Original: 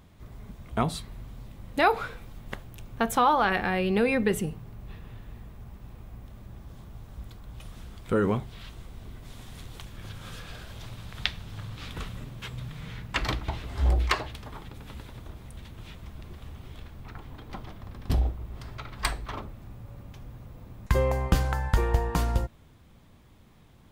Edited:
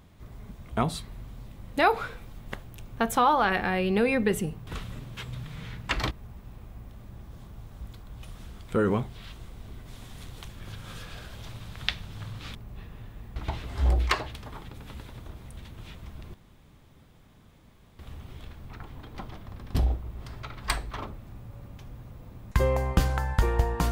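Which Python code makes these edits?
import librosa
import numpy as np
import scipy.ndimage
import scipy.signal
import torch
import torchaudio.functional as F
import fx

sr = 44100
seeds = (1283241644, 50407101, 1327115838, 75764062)

y = fx.edit(x, sr, fx.swap(start_s=4.67, length_s=0.81, other_s=11.92, other_length_s=1.44),
    fx.insert_room_tone(at_s=16.34, length_s=1.65), tone=tone)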